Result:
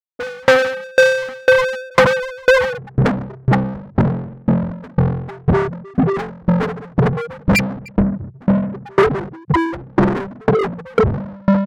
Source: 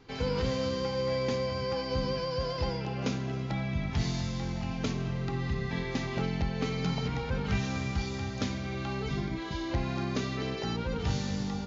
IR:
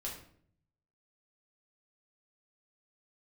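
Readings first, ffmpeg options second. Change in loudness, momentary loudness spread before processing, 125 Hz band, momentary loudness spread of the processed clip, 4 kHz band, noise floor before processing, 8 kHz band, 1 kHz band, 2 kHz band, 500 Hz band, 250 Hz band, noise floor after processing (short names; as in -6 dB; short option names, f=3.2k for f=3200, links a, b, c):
+15.0 dB, 3 LU, +12.0 dB, 7 LU, +7.5 dB, -36 dBFS, n/a, +16.0 dB, +20.0 dB, +17.0 dB, +14.5 dB, -42 dBFS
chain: -filter_complex "[0:a]lowshelf=f=280:g=-3.5,asplit=2[a][b];[b]adelay=143,lowpass=f=850:p=1,volume=-16dB,asplit=2[c][d];[d]adelay=143,lowpass=f=850:p=1,volume=0.37,asplit=2[e][f];[f]adelay=143,lowpass=f=850:p=1,volume=0.37[g];[a][c][e][g]amix=inputs=4:normalize=0,asplit=2[h][i];[1:a]atrim=start_sample=2205,asetrate=25578,aresample=44100,adelay=138[j];[i][j]afir=irnorm=-1:irlink=0,volume=-18.5dB[k];[h][k]amix=inputs=2:normalize=0,afftfilt=real='re*gte(hypot(re,im),0.112)':imag='im*gte(hypot(re,im),0.112)':win_size=1024:overlap=0.75,asplit=2[l][m];[m]highpass=f=720:p=1,volume=30dB,asoftclip=type=tanh:threshold=-21.5dB[n];[l][n]amix=inputs=2:normalize=0,lowpass=f=3.3k:p=1,volume=-6dB,bandreject=f=60:t=h:w=6,bandreject=f=120:t=h:w=6,bandreject=f=180:t=h:w=6,apsyclip=34dB,asplit=2[o][p];[p]acontrast=71,volume=1dB[q];[o][q]amix=inputs=2:normalize=0,firequalizer=gain_entry='entry(140,0);entry(550,2);entry(1600,7);entry(2600,2)':delay=0.05:min_phase=1,aeval=exprs='val(0)*pow(10,-35*if(lt(mod(2*n/s,1),2*abs(2)/1000),1-mod(2*n/s,1)/(2*abs(2)/1000),(mod(2*n/s,1)-2*abs(2)/1000)/(1-2*abs(2)/1000))/20)':c=same,volume=-14.5dB"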